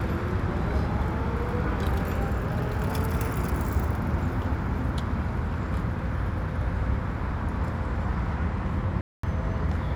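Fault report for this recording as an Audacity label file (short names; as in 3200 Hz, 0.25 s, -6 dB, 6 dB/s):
9.010000	9.230000	gap 0.224 s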